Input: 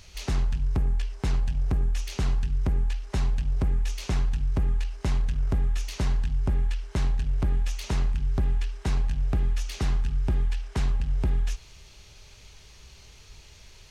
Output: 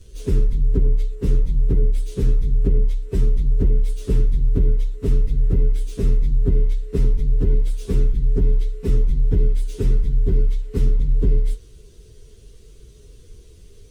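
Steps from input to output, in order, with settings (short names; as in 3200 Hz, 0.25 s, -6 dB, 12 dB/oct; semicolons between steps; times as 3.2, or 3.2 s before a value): inharmonic rescaling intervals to 112%; resonant low shelf 570 Hz +10.5 dB, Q 3; gain -1 dB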